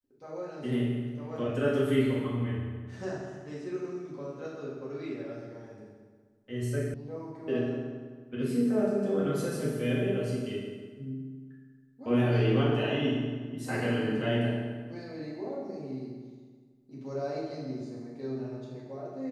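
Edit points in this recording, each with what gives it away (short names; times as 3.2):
6.94 sound cut off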